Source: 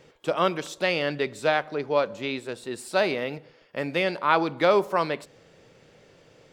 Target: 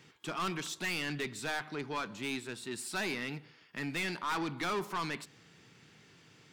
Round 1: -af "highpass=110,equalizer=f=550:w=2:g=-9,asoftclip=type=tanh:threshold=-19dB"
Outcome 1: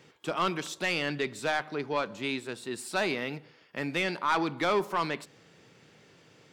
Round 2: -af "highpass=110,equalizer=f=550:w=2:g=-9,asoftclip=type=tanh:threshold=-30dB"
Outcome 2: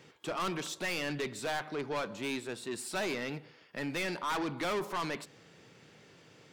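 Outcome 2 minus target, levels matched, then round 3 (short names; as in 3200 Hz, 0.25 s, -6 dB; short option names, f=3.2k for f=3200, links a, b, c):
500 Hz band +4.0 dB
-af "highpass=110,equalizer=f=550:w=2:g=-20.5,asoftclip=type=tanh:threshold=-30dB"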